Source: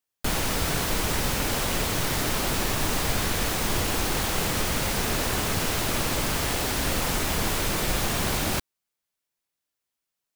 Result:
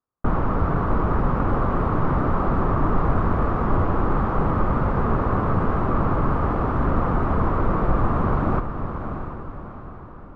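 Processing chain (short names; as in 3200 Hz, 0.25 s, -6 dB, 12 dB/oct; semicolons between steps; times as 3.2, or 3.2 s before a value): synth low-pass 1200 Hz, resonance Q 4.5; tilt shelf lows +8 dB, about 710 Hz; diffused feedback echo 0.667 s, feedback 45%, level -8 dB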